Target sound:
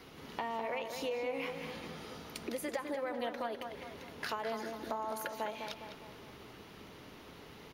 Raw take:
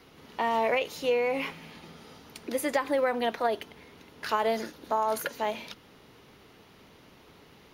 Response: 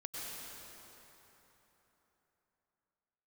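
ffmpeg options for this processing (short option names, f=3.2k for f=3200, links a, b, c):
-filter_complex "[0:a]acompressor=threshold=-39dB:ratio=4,asplit=2[a][b];[b]adelay=205,lowpass=f=2.8k:p=1,volume=-6dB,asplit=2[c][d];[d]adelay=205,lowpass=f=2.8k:p=1,volume=0.54,asplit=2[e][f];[f]adelay=205,lowpass=f=2.8k:p=1,volume=0.54,asplit=2[g][h];[h]adelay=205,lowpass=f=2.8k:p=1,volume=0.54,asplit=2[i][j];[j]adelay=205,lowpass=f=2.8k:p=1,volume=0.54,asplit=2[k][l];[l]adelay=205,lowpass=f=2.8k:p=1,volume=0.54,asplit=2[m][n];[n]adelay=205,lowpass=f=2.8k:p=1,volume=0.54[o];[c][e][g][i][k][m][o]amix=inputs=7:normalize=0[p];[a][p]amix=inputs=2:normalize=0,volume=1.5dB"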